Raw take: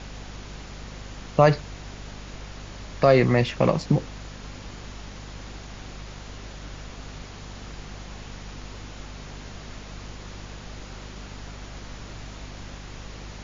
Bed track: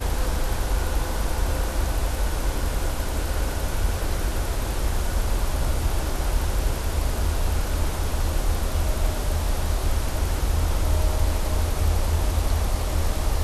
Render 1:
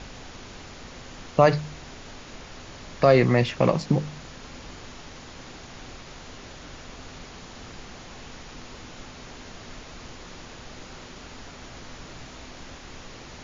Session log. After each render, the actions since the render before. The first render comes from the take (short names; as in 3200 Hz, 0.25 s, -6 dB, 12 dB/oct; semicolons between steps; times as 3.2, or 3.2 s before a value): de-hum 50 Hz, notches 4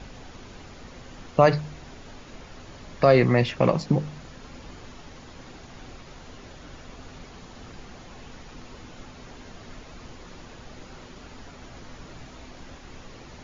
denoiser 6 dB, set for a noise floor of -44 dBFS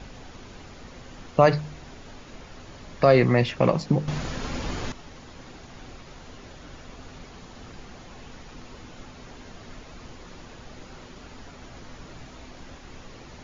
4.08–4.92 gain +12 dB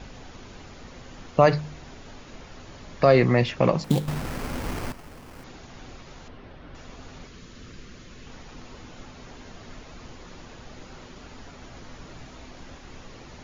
3.84–5.44 sample-rate reducer 3700 Hz, jitter 20%; 6.28–6.75 air absorption 270 m; 7.27–8.27 bell 800 Hz -14 dB 0.64 oct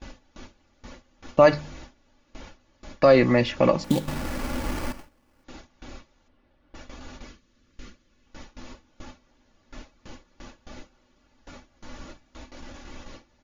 gate with hold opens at -32 dBFS; comb 3.5 ms, depth 51%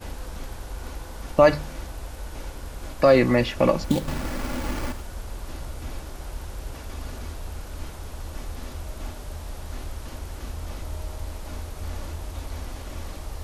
add bed track -11.5 dB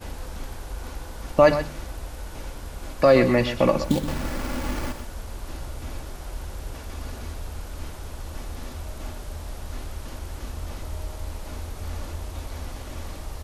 echo 0.125 s -11 dB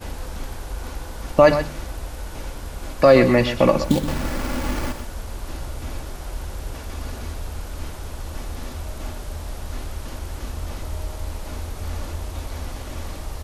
gain +3.5 dB; limiter -1 dBFS, peak gain reduction 1.5 dB